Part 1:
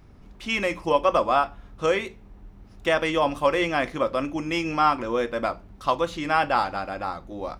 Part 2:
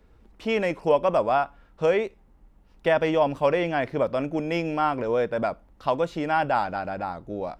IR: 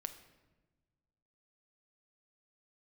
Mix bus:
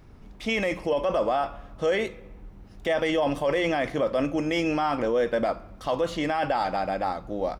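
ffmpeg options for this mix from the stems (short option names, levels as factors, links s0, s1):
-filter_complex "[0:a]volume=0.708,asplit=2[s0][s1];[s1]volume=0.631[s2];[1:a]adelay=4,volume=0.794[s3];[2:a]atrim=start_sample=2205[s4];[s2][s4]afir=irnorm=-1:irlink=0[s5];[s0][s3][s5]amix=inputs=3:normalize=0,alimiter=limit=0.15:level=0:latency=1:release=13"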